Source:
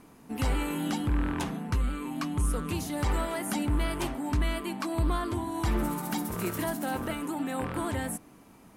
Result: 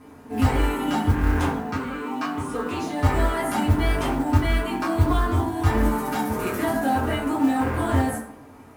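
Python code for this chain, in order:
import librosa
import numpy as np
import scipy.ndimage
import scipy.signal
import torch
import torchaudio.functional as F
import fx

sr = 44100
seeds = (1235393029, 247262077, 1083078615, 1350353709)

y = fx.bandpass_edges(x, sr, low_hz=220.0, high_hz=7100.0, at=(1.49, 3.03))
y = fx.rev_fdn(y, sr, rt60_s=0.71, lf_ratio=0.8, hf_ratio=0.5, size_ms=66.0, drr_db=-8.5)
y = fx.mod_noise(y, sr, seeds[0], snr_db=25)
y = fx.high_shelf(y, sr, hz=4300.0, db=-5.5)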